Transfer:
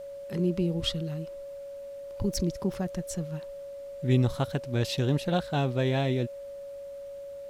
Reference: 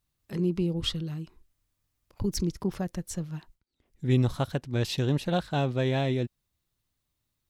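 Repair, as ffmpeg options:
-af "bandreject=f=560:w=30,agate=range=-21dB:threshold=-33dB"

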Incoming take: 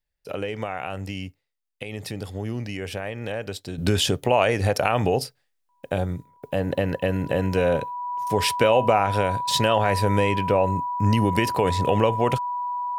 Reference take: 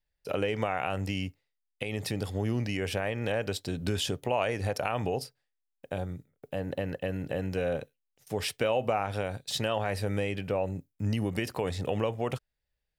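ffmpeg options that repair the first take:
-af "bandreject=f=980:w=30,asetnsamples=n=441:p=0,asendcmd='3.78 volume volume -9dB',volume=0dB"

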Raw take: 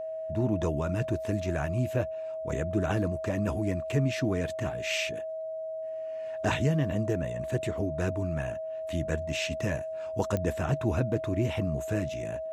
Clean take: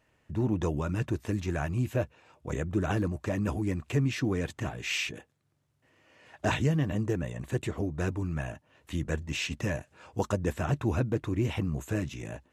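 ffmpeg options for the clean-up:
-af "adeclick=t=4,bandreject=f=640:w=30"

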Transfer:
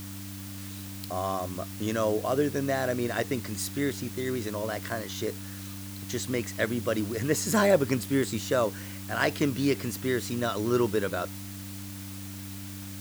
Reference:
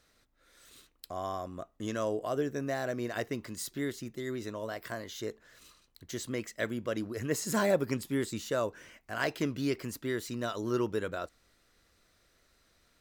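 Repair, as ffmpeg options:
-af "bandreject=f=97.5:t=h:w=4,bandreject=f=195:t=h:w=4,bandreject=f=292.5:t=h:w=4,afwtdn=0.0056,asetnsamples=n=441:p=0,asendcmd='0.58 volume volume -5.5dB',volume=0dB"

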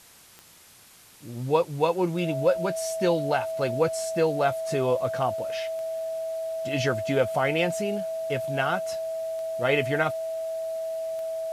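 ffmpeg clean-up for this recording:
-af "adeclick=t=4,bandreject=f=650:w=30,afwtdn=0.0028"

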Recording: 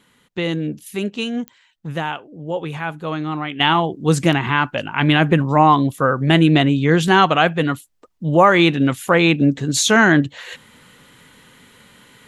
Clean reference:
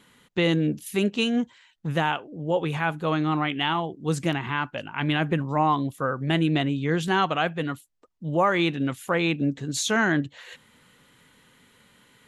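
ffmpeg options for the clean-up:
-af "adeclick=t=4,asetnsamples=n=441:p=0,asendcmd='3.6 volume volume -9.5dB',volume=0dB"

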